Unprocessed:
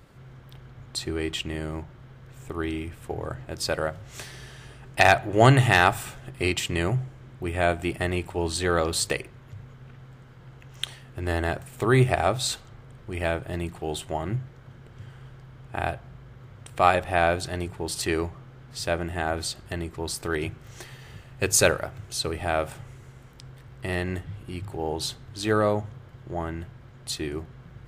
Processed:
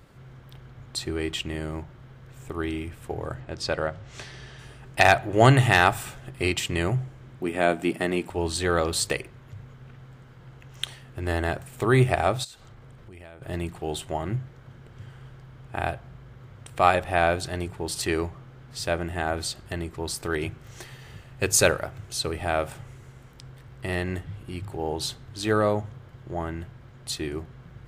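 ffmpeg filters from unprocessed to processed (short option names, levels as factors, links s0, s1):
-filter_complex "[0:a]asettb=1/sr,asplit=3[s0][s1][s2];[s0]atrim=end=3.404[s3];[s1]atrim=start=3.4:end=4.59,asetpts=PTS-STARTPTS,afade=t=in:d=0.004:c=qsin,afade=t=out:st=1.186:d=0.004:c=qsin,lowpass=5800[s4];[s2]atrim=start=4.586[s5];[s3][s4]acrossfade=d=0.004:c1=hsin:c2=qsin[s6];[s6][s5]acrossfade=d=0.004:c1=qsin:c2=hsin,asettb=1/sr,asplit=3[s7][s8][s9];[s7]atrim=end=7.404[s10];[s8]atrim=start=7.4:end=8.3,asetpts=PTS-STARTPTS,afade=t=in:d=0.004:c=qsin,afade=t=out:st=0.896:d=0.004:c=qsin,highpass=f=220:t=q:w=2[s11];[s9]atrim=start=8.296[s12];[s10][s11]acrossfade=d=0.004:c1=hsin:c2=qsin[s13];[s13][s12]acrossfade=d=0.004:c1=qsin:c2=hsin,asplit=3[s14][s15][s16];[s14]afade=t=out:st=12.43:d=0.02[s17];[s15]acompressor=threshold=0.00708:ratio=6:attack=3.2:release=140:knee=1:detection=peak,afade=t=in:st=12.43:d=0.02,afade=t=out:st=13.41:d=0.02[s18];[s16]afade=t=in:st=13.41:d=0.02[s19];[s17][s18][s19]amix=inputs=3:normalize=0"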